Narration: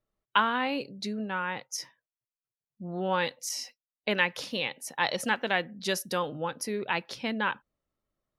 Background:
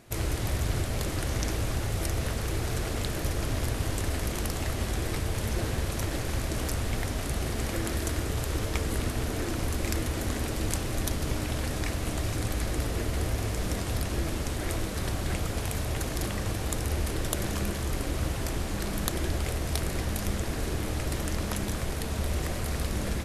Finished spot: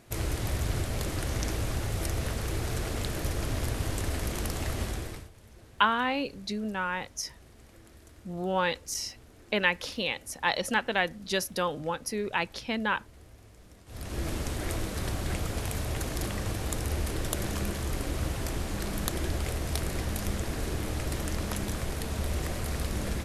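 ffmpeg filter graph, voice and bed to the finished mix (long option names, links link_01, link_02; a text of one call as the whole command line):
ffmpeg -i stem1.wav -i stem2.wav -filter_complex "[0:a]adelay=5450,volume=0.5dB[link_01];[1:a]volume=20.5dB,afade=type=out:start_time=4.81:duration=0.49:silence=0.0794328,afade=type=in:start_time=13.86:duration=0.43:silence=0.0794328[link_02];[link_01][link_02]amix=inputs=2:normalize=0" out.wav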